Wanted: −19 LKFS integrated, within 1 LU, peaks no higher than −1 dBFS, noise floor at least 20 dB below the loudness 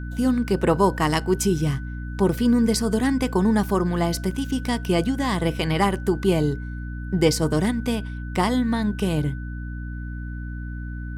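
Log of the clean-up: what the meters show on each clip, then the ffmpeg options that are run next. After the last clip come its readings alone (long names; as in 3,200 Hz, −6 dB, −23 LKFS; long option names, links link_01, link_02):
mains hum 60 Hz; hum harmonics up to 300 Hz; level of the hum −28 dBFS; interfering tone 1,500 Hz; level of the tone −42 dBFS; integrated loudness −22.5 LKFS; sample peak −5.5 dBFS; target loudness −19.0 LKFS
→ -af "bandreject=frequency=60:width_type=h:width=6,bandreject=frequency=120:width_type=h:width=6,bandreject=frequency=180:width_type=h:width=6,bandreject=frequency=240:width_type=h:width=6,bandreject=frequency=300:width_type=h:width=6"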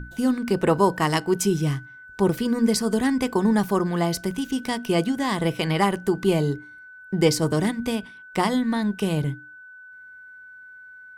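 mains hum none found; interfering tone 1,500 Hz; level of the tone −42 dBFS
→ -af "bandreject=frequency=1500:width=30"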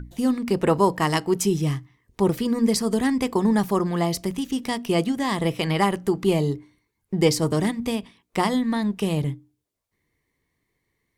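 interfering tone none found; integrated loudness −23.5 LKFS; sample peak −6.5 dBFS; target loudness −19.0 LKFS
→ -af "volume=4.5dB"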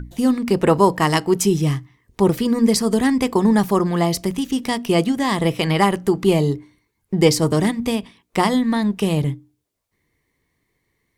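integrated loudness −19.0 LKFS; sample peak −2.0 dBFS; background noise floor −73 dBFS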